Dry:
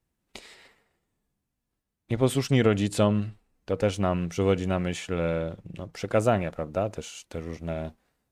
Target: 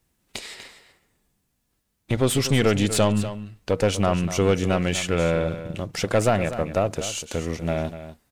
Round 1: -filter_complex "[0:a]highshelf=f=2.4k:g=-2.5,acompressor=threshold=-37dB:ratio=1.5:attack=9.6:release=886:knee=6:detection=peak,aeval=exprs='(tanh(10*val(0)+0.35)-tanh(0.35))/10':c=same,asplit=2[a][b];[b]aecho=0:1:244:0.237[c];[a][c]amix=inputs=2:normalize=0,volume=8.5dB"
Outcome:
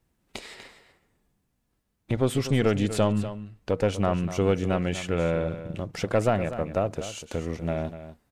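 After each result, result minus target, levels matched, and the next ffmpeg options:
4000 Hz band -5.0 dB; compressor: peak gain reduction +3.5 dB
-filter_complex "[0:a]highshelf=f=2.4k:g=6,acompressor=threshold=-37dB:ratio=1.5:attack=9.6:release=886:knee=6:detection=peak,aeval=exprs='(tanh(10*val(0)+0.35)-tanh(0.35))/10':c=same,asplit=2[a][b];[b]aecho=0:1:244:0.237[c];[a][c]amix=inputs=2:normalize=0,volume=8.5dB"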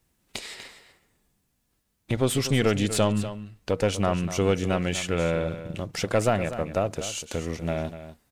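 compressor: peak gain reduction +3.5 dB
-filter_complex "[0:a]highshelf=f=2.4k:g=6,acompressor=threshold=-26dB:ratio=1.5:attack=9.6:release=886:knee=6:detection=peak,aeval=exprs='(tanh(10*val(0)+0.35)-tanh(0.35))/10':c=same,asplit=2[a][b];[b]aecho=0:1:244:0.237[c];[a][c]amix=inputs=2:normalize=0,volume=8.5dB"

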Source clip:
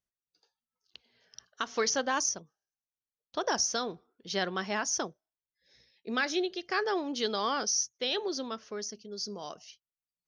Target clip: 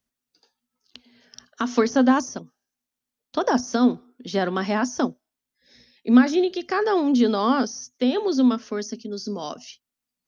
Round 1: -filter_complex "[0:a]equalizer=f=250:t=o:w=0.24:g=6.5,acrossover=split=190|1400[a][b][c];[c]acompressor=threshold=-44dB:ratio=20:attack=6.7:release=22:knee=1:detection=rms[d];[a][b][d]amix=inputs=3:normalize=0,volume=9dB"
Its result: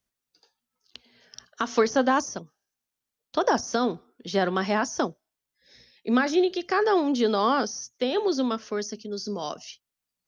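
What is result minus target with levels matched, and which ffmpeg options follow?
250 Hz band -3.5 dB
-filter_complex "[0:a]equalizer=f=250:t=o:w=0.24:g=18,acrossover=split=190|1400[a][b][c];[c]acompressor=threshold=-44dB:ratio=20:attack=6.7:release=22:knee=1:detection=rms[d];[a][b][d]amix=inputs=3:normalize=0,volume=9dB"

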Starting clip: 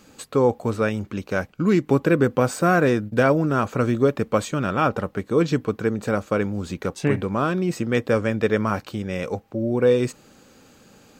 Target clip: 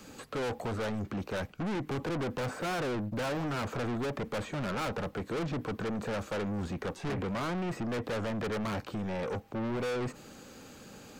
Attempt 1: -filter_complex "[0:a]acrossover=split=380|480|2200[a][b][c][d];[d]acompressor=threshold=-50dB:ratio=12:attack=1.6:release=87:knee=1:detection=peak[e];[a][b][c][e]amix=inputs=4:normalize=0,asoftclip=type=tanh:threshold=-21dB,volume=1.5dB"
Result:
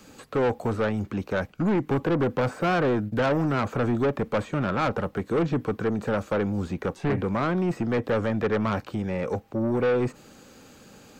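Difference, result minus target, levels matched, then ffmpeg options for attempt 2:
soft clip: distortion -6 dB
-filter_complex "[0:a]acrossover=split=380|480|2200[a][b][c][d];[d]acompressor=threshold=-50dB:ratio=12:attack=1.6:release=87:knee=1:detection=peak[e];[a][b][c][e]amix=inputs=4:normalize=0,asoftclip=type=tanh:threshold=-33dB,volume=1.5dB"

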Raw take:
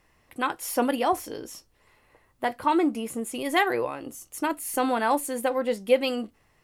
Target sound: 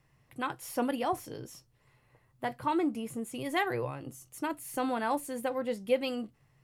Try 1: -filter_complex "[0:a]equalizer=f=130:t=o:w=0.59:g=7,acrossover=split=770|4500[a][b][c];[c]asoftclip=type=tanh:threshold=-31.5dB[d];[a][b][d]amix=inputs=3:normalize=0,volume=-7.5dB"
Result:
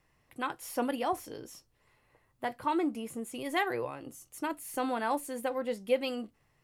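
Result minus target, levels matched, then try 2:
125 Hz band -8.0 dB
-filter_complex "[0:a]equalizer=f=130:t=o:w=0.59:g=18.5,acrossover=split=770|4500[a][b][c];[c]asoftclip=type=tanh:threshold=-31.5dB[d];[a][b][d]amix=inputs=3:normalize=0,volume=-7.5dB"

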